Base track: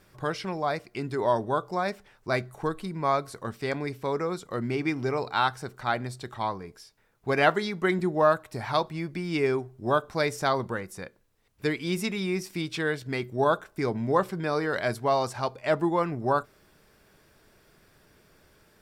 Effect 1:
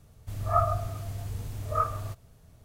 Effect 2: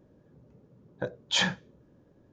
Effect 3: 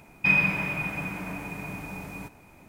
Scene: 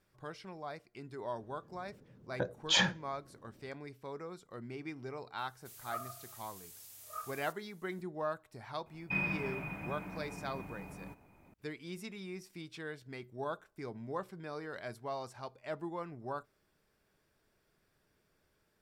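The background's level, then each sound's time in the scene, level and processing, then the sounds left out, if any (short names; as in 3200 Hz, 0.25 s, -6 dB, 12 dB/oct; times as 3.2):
base track -15.5 dB
1.38 add 2 -2 dB
5.38 add 1 -1 dB + differentiator
8.86 add 3 -8.5 dB + bell 7000 Hz -9.5 dB 2.9 oct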